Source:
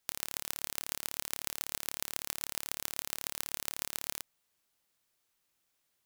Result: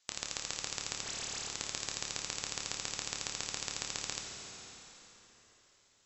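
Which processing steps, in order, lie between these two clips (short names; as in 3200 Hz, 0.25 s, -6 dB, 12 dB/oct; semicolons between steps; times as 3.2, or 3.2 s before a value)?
HPF 290 Hz 6 dB/oct; high shelf 3000 Hz +11 dB; in parallel at -2.5 dB: limiter -7.5 dBFS, peak gain reduction 11.5 dB; on the sum: soft clip -6 dBFS, distortion -8 dB; 1.02–1.49 dispersion highs, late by 52 ms, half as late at 2200 Hz; ring modulator 210 Hz; brick-wall FIR low-pass 7900 Hz; plate-style reverb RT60 4 s, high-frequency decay 0.85×, DRR 0.5 dB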